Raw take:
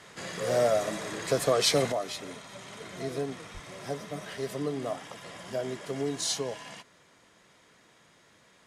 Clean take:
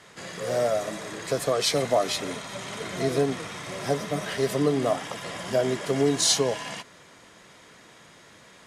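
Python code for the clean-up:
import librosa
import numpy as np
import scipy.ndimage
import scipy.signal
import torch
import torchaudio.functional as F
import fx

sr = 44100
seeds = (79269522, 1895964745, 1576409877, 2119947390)

y = fx.highpass(x, sr, hz=140.0, slope=24, at=(3.53, 3.65), fade=0.02)
y = fx.gain(y, sr, db=fx.steps((0.0, 0.0), (1.92, 9.0)))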